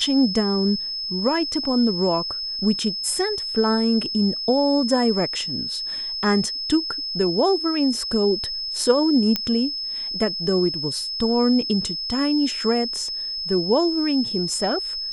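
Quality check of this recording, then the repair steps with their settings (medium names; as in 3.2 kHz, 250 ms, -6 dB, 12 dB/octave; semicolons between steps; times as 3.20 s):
whine 5.2 kHz -26 dBFS
9.36 s: pop -7 dBFS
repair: de-click; band-stop 5.2 kHz, Q 30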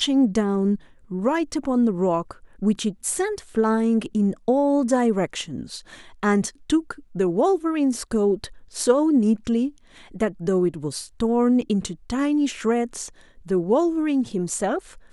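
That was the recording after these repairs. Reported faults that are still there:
nothing left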